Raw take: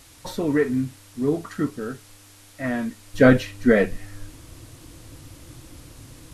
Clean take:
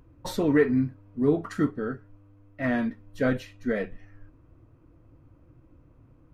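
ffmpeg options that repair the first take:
-af "afwtdn=0.0035,asetnsamples=n=441:p=0,asendcmd='3.14 volume volume -11dB',volume=0dB"

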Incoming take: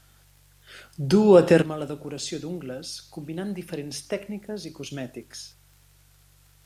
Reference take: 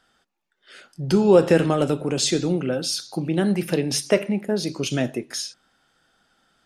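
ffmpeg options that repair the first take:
-af "adeclick=t=4,bandreject=f=47.9:t=h:w=4,bandreject=f=95.8:t=h:w=4,bandreject=f=143.7:t=h:w=4,agate=range=-21dB:threshold=-49dB,asetnsamples=n=441:p=0,asendcmd='1.62 volume volume 10.5dB',volume=0dB"

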